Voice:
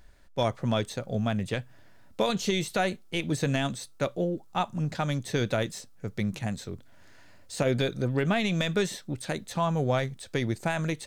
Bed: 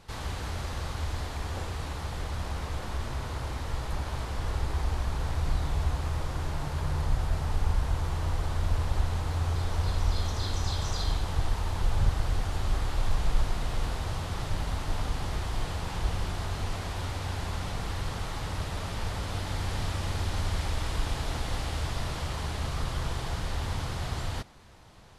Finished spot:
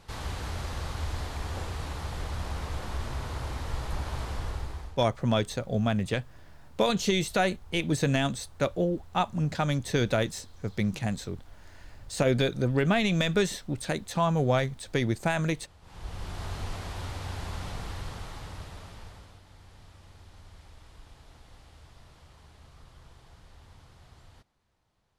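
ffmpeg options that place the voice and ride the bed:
ffmpeg -i stem1.wav -i stem2.wav -filter_complex "[0:a]adelay=4600,volume=1.5dB[link_01];[1:a]volume=20dB,afade=type=out:start_time=4.31:duration=0.68:silence=0.0707946,afade=type=in:start_time=15.81:duration=0.66:silence=0.0944061,afade=type=out:start_time=17.68:duration=1.72:silence=0.11885[link_02];[link_01][link_02]amix=inputs=2:normalize=0" out.wav

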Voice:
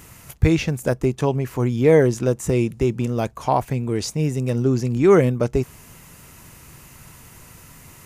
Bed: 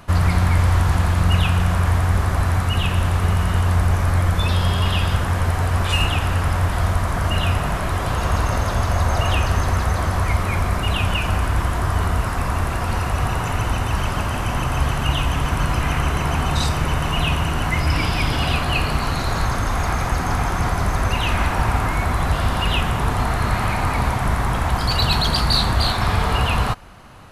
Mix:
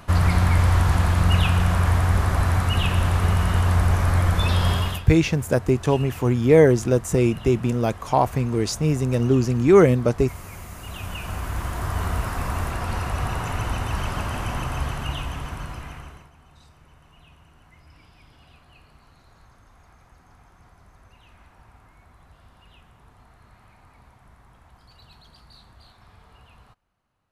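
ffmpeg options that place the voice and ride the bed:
ffmpeg -i stem1.wav -i stem2.wav -filter_complex "[0:a]adelay=4650,volume=0.5dB[link_01];[1:a]volume=12.5dB,afade=type=out:start_time=4.72:duration=0.32:silence=0.133352,afade=type=in:start_time=10.76:duration=1.38:silence=0.199526,afade=type=out:start_time=14.43:duration=1.87:silence=0.0398107[link_02];[link_01][link_02]amix=inputs=2:normalize=0" out.wav

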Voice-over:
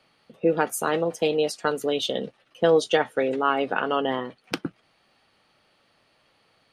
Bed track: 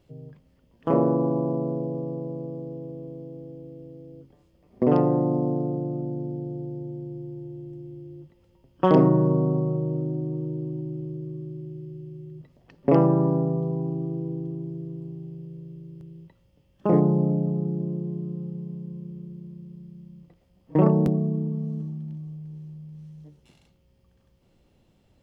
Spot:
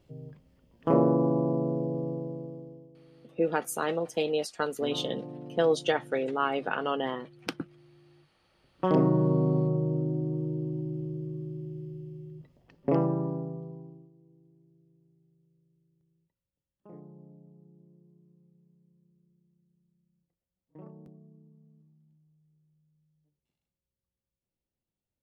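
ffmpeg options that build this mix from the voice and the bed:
ffmpeg -i stem1.wav -i stem2.wav -filter_complex "[0:a]adelay=2950,volume=-5.5dB[link_01];[1:a]volume=15dB,afade=type=out:start_time=2.08:duration=0.82:silence=0.149624,afade=type=in:start_time=8.33:duration=1.27:silence=0.149624,afade=type=out:start_time=11.82:duration=2.29:silence=0.0398107[link_02];[link_01][link_02]amix=inputs=2:normalize=0" out.wav

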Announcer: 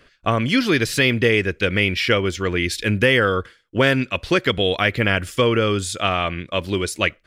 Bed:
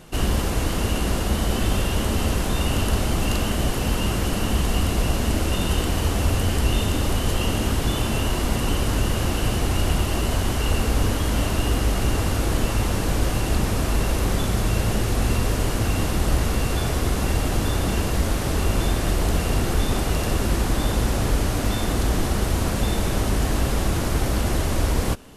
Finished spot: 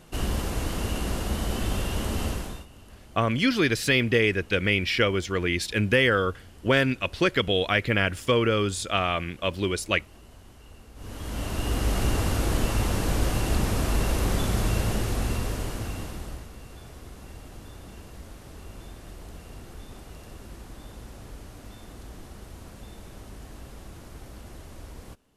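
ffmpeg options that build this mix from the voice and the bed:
ffmpeg -i stem1.wav -i stem2.wav -filter_complex "[0:a]adelay=2900,volume=-4.5dB[link_01];[1:a]volume=18.5dB,afade=type=out:start_time=2.25:duration=0.41:silence=0.0841395,afade=type=in:start_time=10.95:duration=1.03:silence=0.0595662,afade=type=out:start_time=14.65:duration=1.83:silence=0.11885[link_02];[link_01][link_02]amix=inputs=2:normalize=0" out.wav

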